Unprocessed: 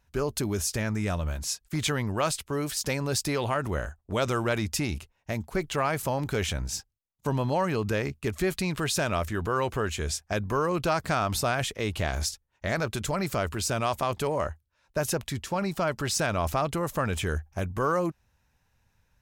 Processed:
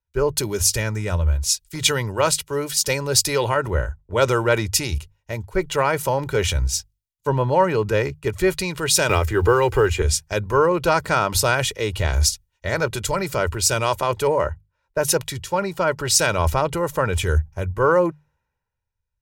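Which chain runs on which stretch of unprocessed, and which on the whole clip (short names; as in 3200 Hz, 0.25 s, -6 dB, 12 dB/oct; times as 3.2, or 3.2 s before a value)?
9.09–10.02 block floating point 7-bit + comb 2.5 ms, depth 44% + three-band squash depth 100%
whole clip: notches 50/100/150 Hz; comb 2.1 ms, depth 55%; three-band expander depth 70%; gain +6.5 dB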